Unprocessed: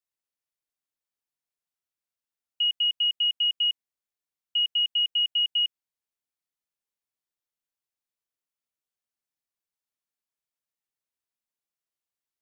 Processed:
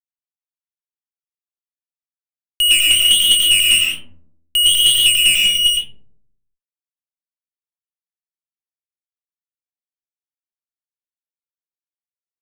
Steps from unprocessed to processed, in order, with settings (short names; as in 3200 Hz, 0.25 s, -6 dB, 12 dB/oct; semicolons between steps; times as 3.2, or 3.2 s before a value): 5.25–5.65 level quantiser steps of 19 dB; flange 1.2 Hz, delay 6.6 ms, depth 5.8 ms, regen +89%; fuzz box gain 53 dB, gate -51 dBFS; digital reverb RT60 0.71 s, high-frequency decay 0.3×, pre-delay 65 ms, DRR -1 dB